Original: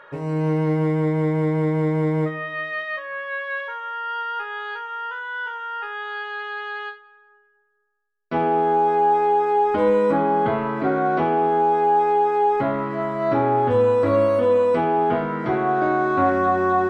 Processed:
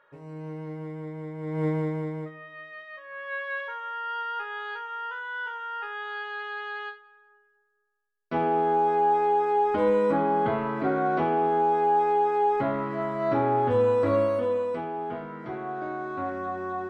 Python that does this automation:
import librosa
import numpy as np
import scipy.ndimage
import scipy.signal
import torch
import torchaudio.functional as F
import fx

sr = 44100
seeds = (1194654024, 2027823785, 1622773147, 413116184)

y = fx.gain(x, sr, db=fx.line((1.38, -16.0), (1.66, -4.0), (2.31, -15.0), (2.92, -15.0), (3.33, -4.5), (14.13, -4.5), (14.9, -13.0)))